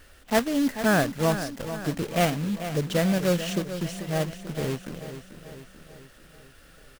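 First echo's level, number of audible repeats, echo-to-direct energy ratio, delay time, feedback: −11.0 dB, 5, −9.5 dB, 439 ms, 55%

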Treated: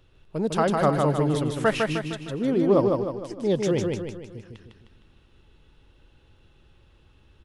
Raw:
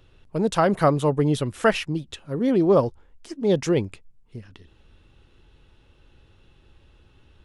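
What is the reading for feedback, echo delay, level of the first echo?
48%, 154 ms, −3.5 dB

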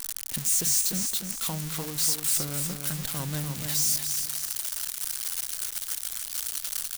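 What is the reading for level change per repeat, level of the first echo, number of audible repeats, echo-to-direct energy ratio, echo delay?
−8.5 dB, −6.0 dB, 3, −5.5 dB, 295 ms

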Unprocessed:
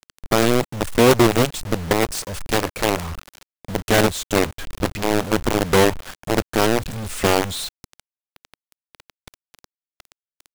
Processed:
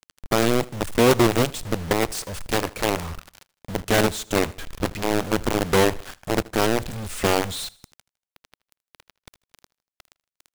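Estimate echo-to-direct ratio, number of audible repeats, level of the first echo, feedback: −21.0 dB, 2, −22.0 dB, 45%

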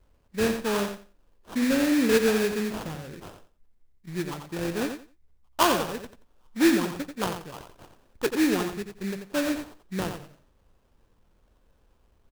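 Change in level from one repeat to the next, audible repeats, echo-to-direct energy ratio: −14.0 dB, 2, −7.5 dB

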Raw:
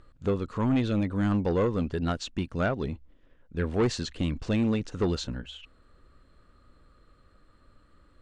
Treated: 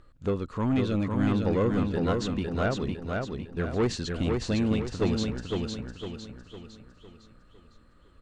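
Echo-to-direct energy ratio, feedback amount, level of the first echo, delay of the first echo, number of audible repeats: −2.5 dB, 44%, −3.5 dB, 506 ms, 5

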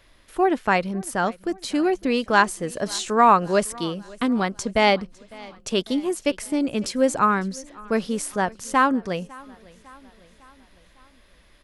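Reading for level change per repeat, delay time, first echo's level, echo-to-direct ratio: −5.0 dB, 553 ms, −23.0 dB, −21.5 dB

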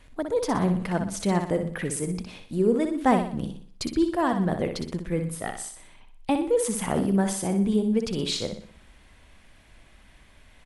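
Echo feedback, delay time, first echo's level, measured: 43%, 61 ms, −7.0 dB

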